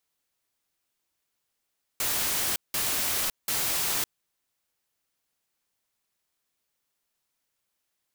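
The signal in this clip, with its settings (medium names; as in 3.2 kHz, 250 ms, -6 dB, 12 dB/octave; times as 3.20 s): noise bursts white, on 0.56 s, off 0.18 s, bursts 3, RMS -27.5 dBFS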